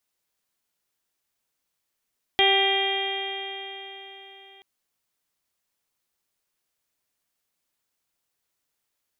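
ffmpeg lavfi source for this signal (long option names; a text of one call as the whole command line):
ffmpeg -f lavfi -i "aevalsrc='0.0708*pow(10,-3*t/4)*sin(2*PI*389.21*t)+0.0794*pow(10,-3*t/4)*sin(2*PI*779.71*t)+0.0141*pow(10,-3*t/4)*sin(2*PI*1172.76*t)+0.015*pow(10,-3*t/4)*sin(2*PI*1569.63*t)+0.0631*pow(10,-3*t/4)*sin(2*PI*1971.56*t)+0.0562*pow(10,-3*t/4)*sin(2*PI*2379.76*t)+0.0282*pow(10,-3*t/4)*sin(2*PI*2795.42*t)+0.112*pow(10,-3*t/4)*sin(2*PI*3219.68*t)+0.02*pow(10,-3*t/4)*sin(2*PI*3653.64*t)':duration=2.23:sample_rate=44100" out.wav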